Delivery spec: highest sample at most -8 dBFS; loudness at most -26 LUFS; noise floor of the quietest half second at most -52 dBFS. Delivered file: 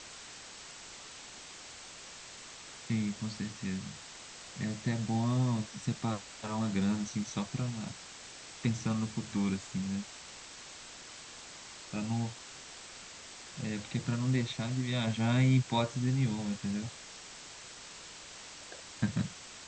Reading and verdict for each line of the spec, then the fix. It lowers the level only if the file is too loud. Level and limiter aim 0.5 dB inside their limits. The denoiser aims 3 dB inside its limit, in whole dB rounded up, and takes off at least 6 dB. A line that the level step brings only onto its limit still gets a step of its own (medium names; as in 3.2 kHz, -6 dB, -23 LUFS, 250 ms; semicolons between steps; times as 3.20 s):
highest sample -17.0 dBFS: pass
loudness -34.0 LUFS: pass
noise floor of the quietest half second -49 dBFS: fail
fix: noise reduction 6 dB, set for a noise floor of -49 dBFS